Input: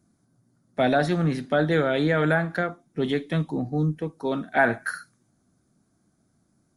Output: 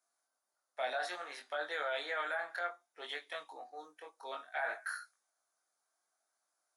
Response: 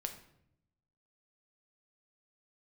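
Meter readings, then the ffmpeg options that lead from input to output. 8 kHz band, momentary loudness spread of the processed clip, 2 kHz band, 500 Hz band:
n/a, 14 LU, -11.0 dB, -17.0 dB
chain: -af "highpass=f=680:w=0.5412,highpass=f=680:w=1.3066,alimiter=limit=-20.5dB:level=0:latency=1:release=12,flanger=delay=20:depth=3.5:speed=0.61,volume=-4dB"

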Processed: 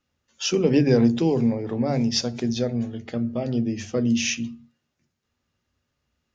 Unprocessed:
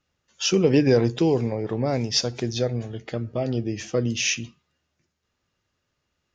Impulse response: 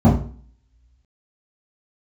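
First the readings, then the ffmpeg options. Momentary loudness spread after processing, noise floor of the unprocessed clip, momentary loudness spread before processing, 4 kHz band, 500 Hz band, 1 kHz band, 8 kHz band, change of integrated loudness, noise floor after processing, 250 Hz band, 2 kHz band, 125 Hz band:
10 LU, -78 dBFS, 11 LU, -2.0 dB, -1.5 dB, -1.0 dB, n/a, +0.5 dB, -79 dBFS, +3.5 dB, -2.0 dB, -0.5 dB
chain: -filter_complex "[0:a]asplit=2[a][b];[1:a]atrim=start_sample=2205,afade=t=out:st=0.33:d=0.01,atrim=end_sample=14994[c];[b][c]afir=irnorm=-1:irlink=0,volume=-38dB[d];[a][d]amix=inputs=2:normalize=0,volume=-2dB"

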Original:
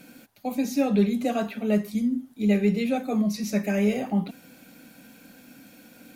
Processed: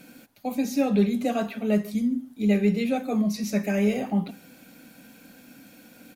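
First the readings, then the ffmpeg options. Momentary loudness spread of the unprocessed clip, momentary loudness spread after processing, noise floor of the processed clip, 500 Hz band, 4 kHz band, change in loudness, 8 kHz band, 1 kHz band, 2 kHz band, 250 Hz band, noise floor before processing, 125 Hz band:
6 LU, 6 LU, -53 dBFS, 0.0 dB, 0.0 dB, 0.0 dB, 0.0 dB, 0.0 dB, 0.0 dB, 0.0 dB, -53 dBFS, 0.0 dB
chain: -filter_complex "[0:a]asplit=2[a][b];[b]adelay=145.8,volume=-23dB,highshelf=f=4k:g=-3.28[c];[a][c]amix=inputs=2:normalize=0"

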